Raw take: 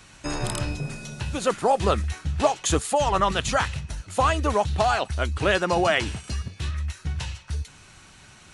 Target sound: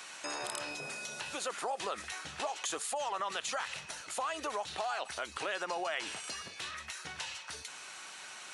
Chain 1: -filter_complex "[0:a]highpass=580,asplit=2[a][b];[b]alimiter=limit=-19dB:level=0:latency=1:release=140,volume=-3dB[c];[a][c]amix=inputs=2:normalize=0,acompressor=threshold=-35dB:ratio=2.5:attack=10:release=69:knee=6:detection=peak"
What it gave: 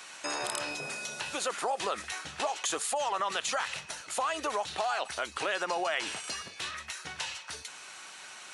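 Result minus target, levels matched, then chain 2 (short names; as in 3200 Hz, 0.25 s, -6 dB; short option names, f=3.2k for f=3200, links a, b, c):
compressor: peak gain reduction -5 dB
-filter_complex "[0:a]highpass=580,asplit=2[a][b];[b]alimiter=limit=-19dB:level=0:latency=1:release=140,volume=-3dB[c];[a][c]amix=inputs=2:normalize=0,acompressor=threshold=-43dB:ratio=2.5:attack=10:release=69:knee=6:detection=peak"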